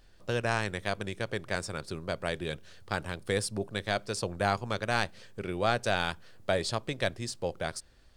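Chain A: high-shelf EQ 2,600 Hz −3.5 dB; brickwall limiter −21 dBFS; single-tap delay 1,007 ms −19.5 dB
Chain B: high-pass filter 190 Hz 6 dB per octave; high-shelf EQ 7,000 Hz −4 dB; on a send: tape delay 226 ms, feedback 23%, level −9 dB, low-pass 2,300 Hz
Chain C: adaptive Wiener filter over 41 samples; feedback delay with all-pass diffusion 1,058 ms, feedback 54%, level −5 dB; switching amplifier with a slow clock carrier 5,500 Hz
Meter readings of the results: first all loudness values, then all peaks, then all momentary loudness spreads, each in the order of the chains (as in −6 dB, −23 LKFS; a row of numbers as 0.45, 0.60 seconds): −36.5, −33.5, −30.0 LKFS; −20.5, −11.5, −12.0 dBFS; 6, 8, 3 LU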